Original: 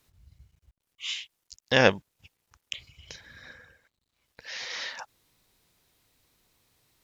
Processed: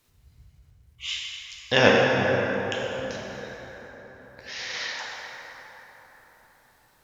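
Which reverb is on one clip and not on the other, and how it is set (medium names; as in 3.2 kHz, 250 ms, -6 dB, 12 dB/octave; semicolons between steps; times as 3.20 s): plate-style reverb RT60 4.6 s, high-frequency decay 0.45×, DRR -4 dB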